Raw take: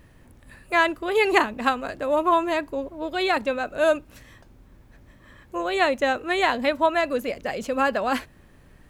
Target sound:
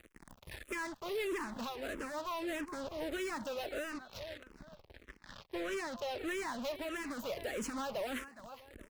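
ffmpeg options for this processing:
-filter_complex "[0:a]acompressor=threshold=0.0355:ratio=6,acrusher=bits=6:mix=0:aa=0.5,equalizer=f=130:t=o:w=0.88:g=-4,aecho=1:1:415|830:0.0841|0.0278,alimiter=limit=0.0631:level=0:latency=1:release=410,asettb=1/sr,asplit=3[s0][s1][s2];[s0]atrim=end=3.904[s3];[s1]atrim=start=3.9:end=6.19,asetpts=PTS-STARTPTS,afade=t=in:d=0.004:c=qsin,afade=t=out:st=2.286:d=0.004:c=qsin,highshelf=f=6300:t=q:w=1.5:g=-6.5[s4];[s2]atrim=start=6.186[s5];[s3][s4]acrossfade=d=0.004:c1=hsin:c2=qsin[s6];[s6][s5]acrossfade=d=0.004:c1=qsin:c2=hsin,asoftclip=type=tanh:threshold=0.0106,bandreject=f=740:w=12,asplit=2[s7][s8];[s8]afreqshift=-1.6[s9];[s7][s9]amix=inputs=2:normalize=1,volume=2.11"

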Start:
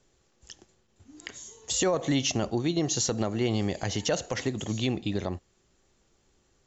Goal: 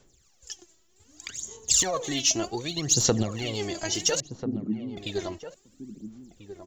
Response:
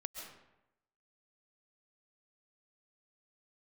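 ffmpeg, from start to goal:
-filter_complex "[0:a]crystalizer=i=3:c=0,asplit=2[s0][s1];[s1]aeval=exprs='clip(val(0),-1,0.178)':c=same,volume=0.335[s2];[s0][s2]amix=inputs=2:normalize=0,aphaser=in_gain=1:out_gain=1:delay=3.1:decay=0.74:speed=0.65:type=sinusoidal,asettb=1/sr,asplit=3[s3][s4][s5];[s3]atrim=end=4.204[s6];[s4]atrim=start=4.2:end=4.97,asetpts=PTS-STARTPTS,afade=t=in:d=0.004:c=qsin,afade=t=out:st=0.766:d=0.004:c=qsin,asuperpass=centerf=240:order=4:qfactor=1.6[s7];[s5]atrim=start=4.966[s8];[s6][s7]acrossfade=d=0.004:c1=hsin:c2=qsin[s9];[s9][s8]acrossfade=d=0.004:c1=qsin:c2=hsin,asplit=2[s10][s11];[s11]adelay=1341,volume=0.282,highshelf=f=4000:g=-30.2[s12];[s10][s12]amix=inputs=2:normalize=0,volume=0.422"

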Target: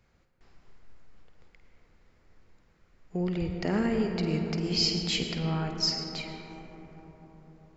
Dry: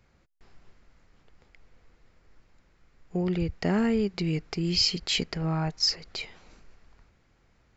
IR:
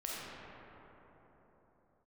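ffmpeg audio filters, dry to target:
-filter_complex "[0:a]asplit=2[s0][s1];[1:a]atrim=start_sample=2205,asetrate=34839,aresample=44100,adelay=51[s2];[s1][s2]afir=irnorm=-1:irlink=0,volume=0.422[s3];[s0][s3]amix=inputs=2:normalize=0,volume=0.708"

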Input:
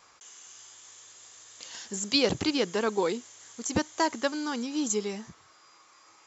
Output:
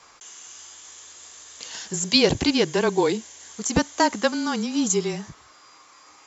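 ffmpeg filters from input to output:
-filter_complex "[0:a]asettb=1/sr,asplit=3[s0][s1][s2];[s0]atrim=end=2.034[s3];[s1]atrim=start=2.03:end=3.51,asetpts=PTS-STARTPTS,afade=t=in:d=0.004:c=qsin,afade=t=out:st=1.476:d=0.004:c=qsin,bandreject=f=1300:w=6.6[s4];[s2]atrim=start=3.506[s5];[s3][s4]acrossfade=d=0.004:c1=hsin:c2=qsin[s6];[s6][s5]acrossfade=d=0.004:c1=qsin:c2=hsin,afreqshift=-24,volume=2.11"

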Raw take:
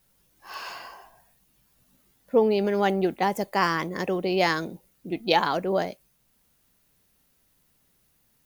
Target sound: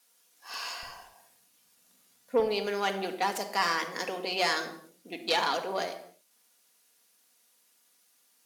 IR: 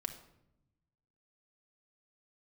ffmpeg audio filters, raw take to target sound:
-filter_complex "[0:a]aemphasis=mode=production:type=riaa,aeval=exprs='(tanh(7.08*val(0)+0.45)-tanh(0.45))/7.08':c=same,asetnsamples=n=441:p=0,asendcmd='0.83 highpass f 110;2.4 highpass f 270',highpass=300,lowpass=7300[s0];[1:a]atrim=start_sample=2205,afade=t=out:st=0.35:d=0.01,atrim=end_sample=15876[s1];[s0][s1]afir=irnorm=-1:irlink=0"

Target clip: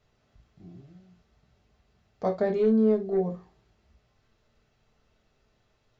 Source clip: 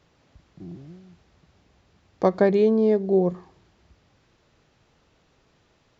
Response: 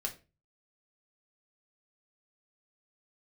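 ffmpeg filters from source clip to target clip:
-filter_complex "[0:a]lowshelf=f=71:g=6,asettb=1/sr,asplit=3[s0][s1][s2];[s0]atrim=end=2.474[s3];[s1]atrim=start=2.47:end=3.18,asetpts=PTS-STARTPTS,afade=t=in:d=0.004:c=qsin,afade=t=out:st=0.706:d=0.004:c=qsin,aeval=exprs='0.335*(cos(1*acos(clip(val(0)/0.335,-1,1)))-cos(1*PI/2))+0.0266*(cos(2*acos(clip(val(0)/0.335,-1,1)))-cos(2*PI/2))+0.00944*(cos(4*acos(clip(val(0)/0.335,-1,1)))-cos(4*PI/2))+0.0106*(cos(5*acos(clip(val(0)/0.335,-1,1)))-cos(5*PI/2))':c=same[s4];[s2]atrim=start=3.176[s5];[s3][s4]acrossfade=d=0.004:c1=hsin:c2=qsin[s6];[s6][s5]acrossfade=d=0.004:c1=qsin:c2=hsin[s7];[1:a]atrim=start_sample=2205,afade=t=out:st=0.13:d=0.01,atrim=end_sample=6174[s8];[s7][s8]afir=irnorm=-1:irlink=0,volume=0.376"

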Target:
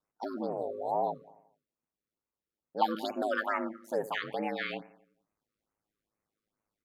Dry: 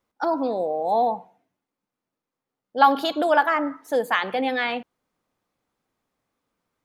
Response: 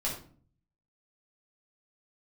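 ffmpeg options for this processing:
-filter_complex "[0:a]asplit=2[s0][s1];[s1]adelay=88,lowpass=f=2200:p=1,volume=0.133,asplit=2[s2][s3];[s3]adelay=88,lowpass=f=2200:p=1,volume=0.54,asplit=2[s4][s5];[s5]adelay=88,lowpass=f=2200:p=1,volume=0.54,asplit=2[s6][s7];[s7]adelay=88,lowpass=f=2200:p=1,volume=0.54,asplit=2[s8][s9];[s9]adelay=88,lowpass=f=2200:p=1,volume=0.54[s10];[s0][s2][s4][s6][s8][s10]amix=inputs=6:normalize=0,aeval=exprs='val(0)*sin(2*PI*53*n/s)':c=same,afftfilt=real='re*(1-between(b*sr/1024,740*pow(4200/740,0.5+0.5*sin(2*PI*2.3*pts/sr))/1.41,740*pow(4200/740,0.5+0.5*sin(2*PI*2.3*pts/sr))*1.41))':imag='im*(1-between(b*sr/1024,740*pow(4200/740,0.5+0.5*sin(2*PI*2.3*pts/sr))/1.41,740*pow(4200/740,0.5+0.5*sin(2*PI*2.3*pts/sr))*1.41))':win_size=1024:overlap=0.75,volume=0.473"

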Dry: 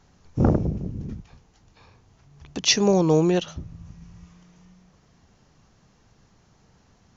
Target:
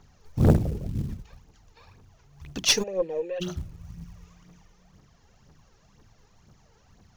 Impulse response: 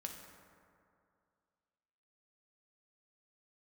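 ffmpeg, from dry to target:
-filter_complex "[0:a]bandreject=f=60:t=h:w=6,bandreject=f=120:t=h:w=6,bandreject=f=180:t=h:w=6,bandreject=f=240:t=h:w=6,bandreject=f=300:t=h:w=6,bandreject=f=360:t=h:w=6,aeval=exprs='0.631*(cos(1*acos(clip(val(0)/0.631,-1,1)))-cos(1*PI/2))+0.0316*(cos(6*acos(clip(val(0)/0.631,-1,1)))-cos(6*PI/2))':c=same,aphaser=in_gain=1:out_gain=1:delay=2.5:decay=0.6:speed=2:type=triangular,acrusher=bits=7:mode=log:mix=0:aa=0.000001,asplit=3[s0][s1][s2];[s0]afade=t=out:st=2.82:d=0.02[s3];[s1]asplit=3[s4][s5][s6];[s4]bandpass=f=530:t=q:w=8,volume=1[s7];[s5]bandpass=f=1840:t=q:w=8,volume=0.501[s8];[s6]bandpass=f=2480:t=q:w=8,volume=0.355[s9];[s7][s8][s9]amix=inputs=3:normalize=0,afade=t=in:st=2.82:d=0.02,afade=t=out:st=3.4:d=0.02[s10];[s2]afade=t=in:st=3.4:d=0.02[s11];[s3][s10][s11]amix=inputs=3:normalize=0,aeval=exprs='(tanh(2.24*val(0)+0.55)-tanh(0.55))/2.24':c=same"

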